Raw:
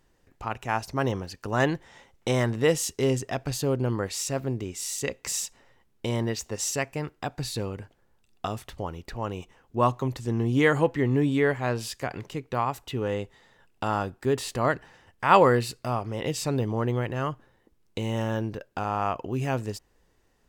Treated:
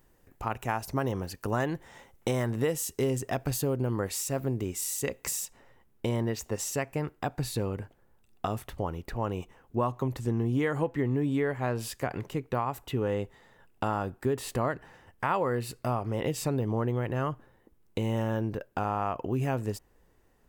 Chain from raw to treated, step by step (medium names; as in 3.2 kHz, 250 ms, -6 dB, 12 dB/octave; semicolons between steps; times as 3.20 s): treble shelf 6.7 kHz +11.5 dB, from 5.45 s +4 dB; compression 6:1, threshold -26 dBFS, peak gain reduction 13.5 dB; peaking EQ 5.1 kHz -8.5 dB 2.1 oct; trim +2 dB